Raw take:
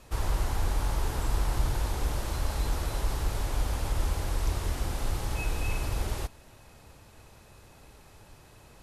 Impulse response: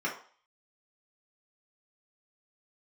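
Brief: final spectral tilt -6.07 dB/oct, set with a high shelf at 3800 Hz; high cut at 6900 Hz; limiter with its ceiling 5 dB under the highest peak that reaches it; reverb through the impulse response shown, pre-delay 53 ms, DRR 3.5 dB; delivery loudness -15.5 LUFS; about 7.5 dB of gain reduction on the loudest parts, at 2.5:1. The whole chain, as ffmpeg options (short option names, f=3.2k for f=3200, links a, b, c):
-filter_complex "[0:a]lowpass=6.9k,highshelf=f=3.8k:g=-7.5,acompressor=threshold=-34dB:ratio=2.5,alimiter=level_in=4.5dB:limit=-24dB:level=0:latency=1,volume=-4.5dB,asplit=2[a][b];[1:a]atrim=start_sample=2205,adelay=53[c];[b][c]afir=irnorm=-1:irlink=0,volume=-11dB[d];[a][d]amix=inputs=2:normalize=0,volume=24.5dB"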